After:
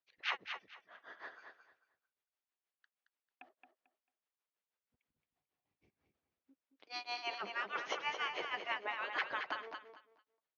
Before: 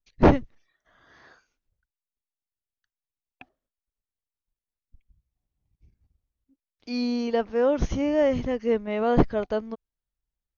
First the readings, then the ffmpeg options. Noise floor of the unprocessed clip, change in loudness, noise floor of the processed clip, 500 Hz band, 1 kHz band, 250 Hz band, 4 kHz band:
under -85 dBFS, -15.5 dB, under -85 dBFS, -24.5 dB, -9.5 dB, -34.0 dB, -1.0 dB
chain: -filter_complex "[0:a]afftfilt=real='re*lt(hypot(re,im),0.0708)':imag='im*lt(hypot(re,im),0.0708)':win_size=1024:overlap=0.75,tremolo=f=6.3:d=0.98,highpass=450,lowpass=3k,asplit=2[a][b];[b]aecho=0:1:222|444|666:0.447|0.0983|0.0216[c];[a][c]amix=inputs=2:normalize=0,volume=7.5dB"

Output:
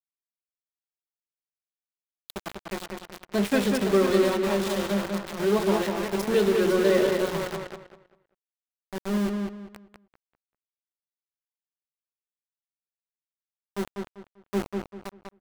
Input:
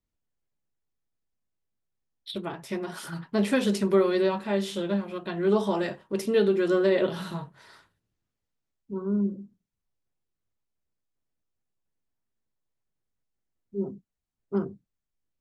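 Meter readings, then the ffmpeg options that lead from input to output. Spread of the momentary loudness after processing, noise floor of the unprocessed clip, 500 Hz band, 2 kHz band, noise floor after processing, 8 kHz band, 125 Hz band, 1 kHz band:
19 LU, -85 dBFS, +1.5 dB, +3.5 dB, under -85 dBFS, +6.0 dB, +0.5 dB, +3.0 dB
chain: -filter_complex "[0:a]asplit=2[a][b];[b]aecho=0:1:504:0.355[c];[a][c]amix=inputs=2:normalize=0,aeval=exprs='val(0)*gte(abs(val(0)),0.0422)':c=same,asplit=2[d][e];[e]adelay=196,lowpass=f=3.9k:p=1,volume=-4dB,asplit=2[f][g];[g]adelay=196,lowpass=f=3.9k:p=1,volume=0.28,asplit=2[h][i];[i]adelay=196,lowpass=f=3.9k:p=1,volume=0.28,asplit=2[j][k];[k]adelay=196,lowpass=f=3.9k:p=1,volume=0.28[l];[f][h][j][l]amix=inputs=4:normalize=0[m];[d][m]amix=inputs=2:normalize=0"

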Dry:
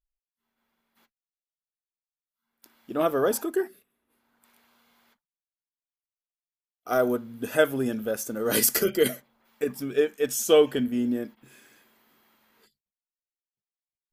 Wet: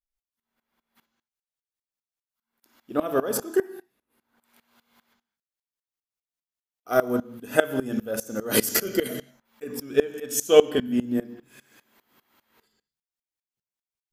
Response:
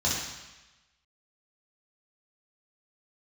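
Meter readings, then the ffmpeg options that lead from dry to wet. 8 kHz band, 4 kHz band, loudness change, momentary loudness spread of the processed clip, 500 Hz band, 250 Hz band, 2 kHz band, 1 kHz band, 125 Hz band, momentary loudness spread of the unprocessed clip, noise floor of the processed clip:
-0.5 dB, +0.5 dB, +0.5 dB, 17 LU, +0.5 dB, +0.5 dB, +1.0 dB, +0.5 dB, +0.5 dB, 12 LU, under -85 dBFS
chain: -filter_complex "[0:a]asplit=2[a][b];[1:a]atrim=start_sample=2205,afade=t=out:st=0.25:d=0.01,atrim=end_sample=11466,adelay=30[c];[b][c]afir=irnorm=-1:irlink=0,volume=-21dB[d];[a][d]amix=inputs=2:normalize=0,aeval=exprs='val(0)*pow(10,-20*if(lt(mod(-5*n/s,1),2*abs(-5)/1000),1-mod(-5*n/s,1)/(2*abs(-5)/1000),(mod(-5*n/s,1)-2*abs(-5)/1000)/(1-2*abs(-5)/1000))/20)':c=same,volume=6dB"

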